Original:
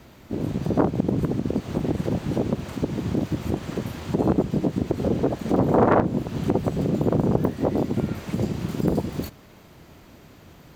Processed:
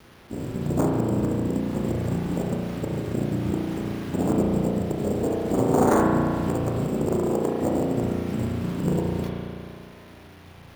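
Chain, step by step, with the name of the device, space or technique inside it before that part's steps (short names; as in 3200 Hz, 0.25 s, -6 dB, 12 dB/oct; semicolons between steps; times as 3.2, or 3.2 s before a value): early 8-bit sampler (sample-rate reducer 7800 Hz, jitter 0%; bit-crush 8-bit); 7.17–7.61 HPF 220 Hz 12 dB/oct; spring tank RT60 2.3 s, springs 34 ms, chirp 50 ms, DRR -2.5 dB; gain -5 dB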